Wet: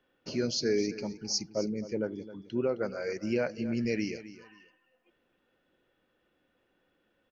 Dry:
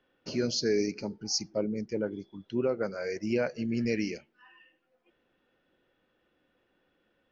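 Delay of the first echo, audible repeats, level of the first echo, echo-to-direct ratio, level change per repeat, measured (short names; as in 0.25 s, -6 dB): 0.264 s, 2, -15.0 dB, -15.0 dB, -13.0 dB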